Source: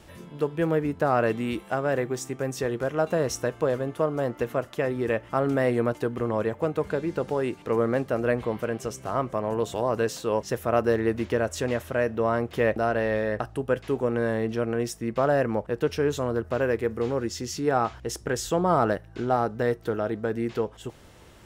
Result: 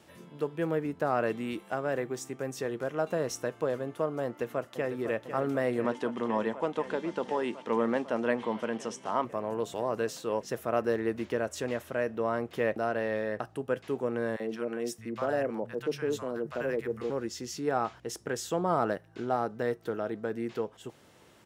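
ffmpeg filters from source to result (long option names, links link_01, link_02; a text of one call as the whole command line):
ffmpeg -i in.wav -filter_complex "[0:a]asplit=2[link_01][link_02];[link_02]afade=type=in:start_time=4.25:duration=0.01,afade=type=out:start_time=4.98:duration=0.01,aecho=0:1:500|1000|1500|2000|2500|3000|3500|4000|4500|5000|5500|6000:0.334965|0.284721|0.242013|0.205711|0.174854|0.148626|0.126332|0.107382|0.0912749|0.0775837|0.0659461|0.0560542[link_03];[link_01][link_03]amix=inputs=2:normalize=0,asettb=1/sr,asplit=3[link_04][link_05][link_06];[link_04]atrim=end=5.844[link_07];[link_05]atrim=start=5.84:end=9.25,asetpts=PTS-STARTPTS,afade=type=in:duration=0.004:curve=qsin,afade=type=out:start_time=3.406:duration=0.004:curve=qsin,highpass=120,equalizer=frequency=140:width_type=q:width=4:gain=-9,equalizer=frequency=220:width_type=q:width=4:gain=7,equalizer=frequency=930:width_type=q:width=4:gain=10,equalizer=frequency=1900:width_type=q:width=4:gain=4,equalizer=frequency=3200:width_type=q:width=4:gain=9,equalizer=frequency=5600:width_type=q:width=4:gain=4,lowpass=frequency=9700:width=0.5412,lowpass=frequency=9700:width=1.3066[link_08];[link_06]atrim=start=9.246[link_09];[link_07][link_08]acrossfade=duration=0.004:curve1=hsin:curve2=qsin[link_10];[link_10][link_09]acrossfade=duration=0.004:curve1=qsin:curve2=hsin,asettb=1/sr,asplit=3[link_11][link_12][link_13];[link_11]atrim=end=14.364[link_14];[link_12]atrim=start=14.36:end=17.1,asetpts=PTS-STARTPTS,afade=type=in:duration=0.004:curve=qsin,afade=type=out:start_time=2.736:duration=0.004:curve=qsin,acrossover=split=150|880[link_15][link_16][link_17];[link_16]adelay=40[link_18];[link_15]adelay=620[link_19];[link_19][link_18][link_17]amix=inputs=3:normalize=0,atrim=end_sample=120834[link_20];[link_13]atrim=start=17.096[link_21];[link_14][link_20]acrossfade=duration=0.004:curve1=hsin:curve2=qsin[link_22];[link_22][link_21]acrossfade=duration=0.004:curve1=qsin:curve2=hsin,highpass=140,volume=-5.5dB" out.wav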